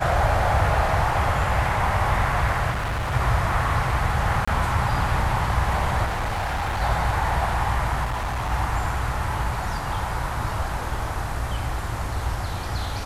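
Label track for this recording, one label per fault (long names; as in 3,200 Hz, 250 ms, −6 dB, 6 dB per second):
2.700000	3.130000	clipping −23 dBFS
4.450000	4.470000	drop-out 25 ms
6.050000	6.820000	clipping −22.5 dBFS
8.040000	8.520000	clipping −23.5 dBFS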